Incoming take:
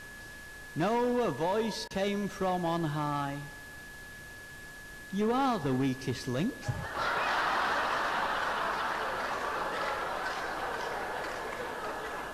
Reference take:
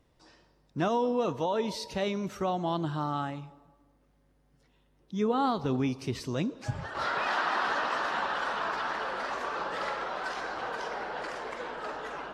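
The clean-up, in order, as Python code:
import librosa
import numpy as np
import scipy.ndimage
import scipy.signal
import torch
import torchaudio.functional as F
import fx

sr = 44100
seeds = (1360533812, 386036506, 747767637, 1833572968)

y = fx.fix_declip(x, sr, threshold_db=-24.0)
y = fx.notch(y, sr, hz=1700.0, q=30.0)
y = fx.fix_interpolate(y, sr, at_s=(1.88,), length_ms=24.0)
y = fx.noise_reduce(y, sr, print_start_s=4.13, print_end_s=4.63, reduce_db=20.0)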